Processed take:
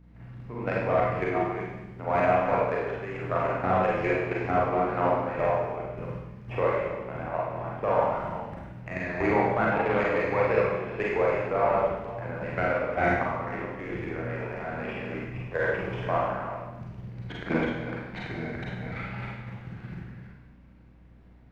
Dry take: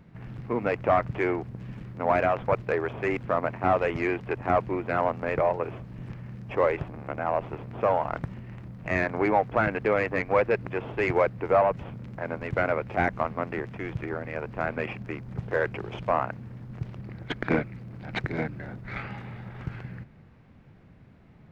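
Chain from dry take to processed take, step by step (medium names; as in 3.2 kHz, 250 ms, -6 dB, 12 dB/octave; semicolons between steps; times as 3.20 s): chunks repeated in reverse 233 ms, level -4.5 dB; level held to a coarse grid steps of 12 dB; Schroeder reverb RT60 0.94 s, combs from 33 ms, DRR -4.5 dB; hum 60 Hz, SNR 26 dB; 9.71–10.24 s: transformer saturation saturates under 670 Hz; trim -3 dB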